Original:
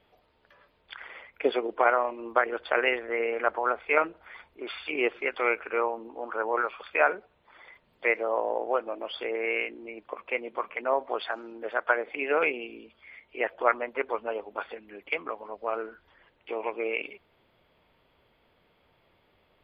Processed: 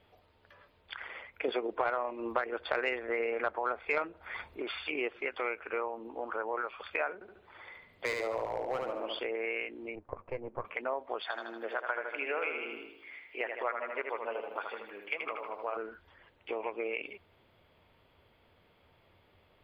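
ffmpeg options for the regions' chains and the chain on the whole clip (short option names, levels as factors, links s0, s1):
-filter_complex "[0:a]asettb=1/sr,asplit=3[s0][s1][s2];[s0]atrim=end=1.484[s3];[s1]atrim=start=1.48:end=4.62,asetpts=PTS-STARTPTS,afade=t=in:d=0.004:c=qsin,afade=t=out:st=3.136:d=0.004:c=qsin,bandreject=f=3000:w=17,acontrast=75[s4];[s2]atrim=start=4.616[s5];[s3][s4]acrossfade=d=0.004:c1=hsin:c2=qsin[s6];[s6][s5]acrossfade=d=0.004:c1=qsin:c2=hsin,asettb=1/sr,asplit=3[s7][s8][s9];[s7]atrim=end=7.144[s10];[s8]atrim=start=7.14:end=9.19,asetpts=PTS-STARTPTS,afade=t=in:d=0.004:c=qsin,afade=t=out:st=2.046:d=0.004:c=qsin,asoftclip=type=hard:threshold=0.0891,aecho=1:1:71|142|213|284|355|426:0.631|0.284|0.128|0.0575|0.0259|0.0116,atrim=end_sample=90405[s11];[s9]atrim=start=9.186[s12];[s10][s11]acrossfade=d=0.004:c1=hsin:c2=qsin[s13];[s13][s12]acrossfade=d=0.004:c1=qsin:c2=hsin,asettb=1/sr,asplit=3[s14][s15][s16];[s14]atrim=end=9.954[s17];[s15]atrim=start=9.95:end=10.65,asetpts=PTS-STARTPTS,afade=t=in:d=0.004:c=qsin,afade=t=out:st=0.696:d=0.004:c=qsin,aeval=exprs='if(lt(val(0),0),0.447*val(0),val(0))':c=same,lowpass=1000[s18];[s16]atrim=start=10.646[s19];[s17][s18]acrossfade=d=0.004:c1=hsin:c2=qsin[s20];[s20][s19]acrossfade=d=0.004:c1=qsin:c2=hsin,asettb=1/sr,asplit=3[s21][s22][s23];[s21]atrim=end=11.224[s24];[s22]atrim=start=11.22:end=15.77,asetpts=PTS-STARTPTS,afade=t=in:d=0.004:c=qsin,afade=t=out:st=4.546:d=0.004:c=qsin,lowpass=f=2100:p=1,aemphasis=mode=production:type=riaa,aecho=1:1:78|156|234|312|390|468:0.501|0.251|0.125|0.0626|0.0313|0.0157,atrim=end_sample=200655[s25];[s23]atrim=start=15.766[s26];[s24][s25]acrossfade=d=0.004:c1=hsin:c2=qsin[s27];[s27][s26]acrossfade=d=0.004:c1=qsin:c2=hsin,equalizer=f=90:w=3.3:g=9,acompressor=threshold=0.0224:ratio=3"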